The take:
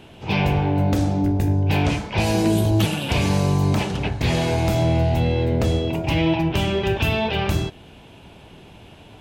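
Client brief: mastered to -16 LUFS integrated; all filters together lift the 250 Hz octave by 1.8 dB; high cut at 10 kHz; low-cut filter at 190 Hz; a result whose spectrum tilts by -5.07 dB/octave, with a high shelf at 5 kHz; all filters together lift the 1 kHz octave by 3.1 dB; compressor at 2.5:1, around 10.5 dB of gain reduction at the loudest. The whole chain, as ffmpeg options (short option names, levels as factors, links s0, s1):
-af "highpass=190,lowpass=10000,equalizer=f=250:t=o:g=4.5,equalizer=f=1000:t=o:g=3.5,highshelf=f=5000:g=7.5,acompressor=threshold=0.0316:ratio=2.5,volume=4.73"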